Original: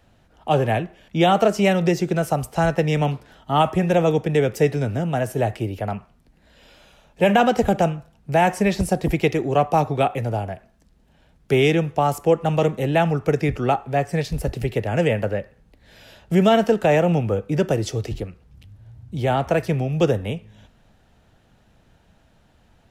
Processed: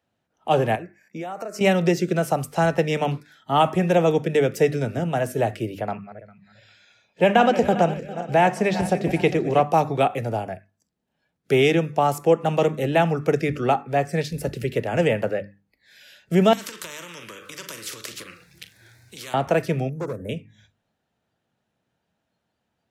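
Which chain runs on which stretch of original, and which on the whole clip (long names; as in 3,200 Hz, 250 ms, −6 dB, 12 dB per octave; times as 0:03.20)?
0:00.75–0:01.61: high-pass filter 370 Hz 6 dB per octave + downward compressor 12 to 1, threshold −27 dBFS + parametric band 3,300 Hz −15 dB 0.52 octaves
0:05.80–0:09.63: feedback delay that plays each chunk backwards 201 ms, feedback 60%, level −12.5 dB + high-shelf EQ 9,100 Hz −12 dB
0:16.53–0:19.34: double-tracking delay 41 ms −13.5 dB + downward compressor 3 to 1, threshold −29 dBFS + every bin compressed towards the loudest bin 4 to 1
0:19.89–0:20.29: Butterworth band-reject 3,100 Hz, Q 0.53 + gain into a clipping stage and back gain 17 dB + downward compressor 12 to 1, threshold −25 dBFS
whole clip: noise reduction from a noise print of the clip's start 16 dB; high-pass filter 130 Hz 12 dB per octave; mains-hum notches 50/100/150/200/250/300 Hz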